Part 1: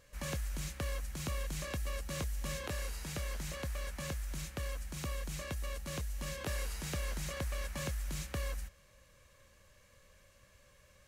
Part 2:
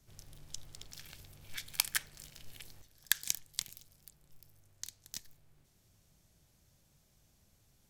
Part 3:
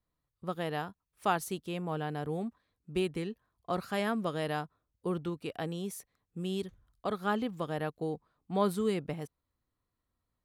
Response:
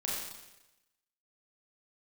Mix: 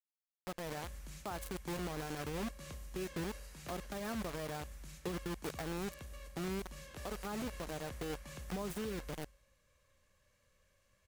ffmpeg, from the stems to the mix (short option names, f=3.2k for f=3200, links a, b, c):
-filter_complex "[0:a]adelay=500,volume=-12.5dB,asplit=2[a][b];[b]volume=-10dB[c];[2:a]equalizer=f=3.1k:t=o:w=1.5:g=-11.5,volume=0dB,acrusher=bits=5:mix=0:aa=0.000001,acompressor=threshold=-36dB:ratio=4,volume=0dB[d];[3:a]atrim=start_sample=2205[e];[c][e]afir=irnorm=-1:irlink=0[f];[a][d][f]amix=inputs=3:normalize=0,alimiter=level_in=8dB:limit=-24dB:level=0:latency=1:release=23,volume=-8dB"